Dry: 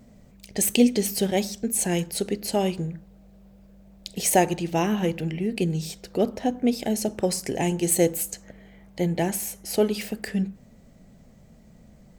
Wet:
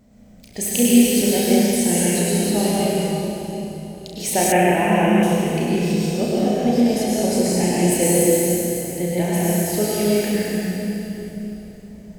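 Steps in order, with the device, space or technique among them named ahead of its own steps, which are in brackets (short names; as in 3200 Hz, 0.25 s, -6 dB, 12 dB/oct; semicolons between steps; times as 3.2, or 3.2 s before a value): tunnel (flutter echo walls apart 5.8 m, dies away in 0.4 s; reverb RT60 3.6 s, pre-delay 94 ms, DRR -7 dB); 4.52–5.23 resonant high shelf 3300 Hz -11 dB, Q 3; gain -3 dB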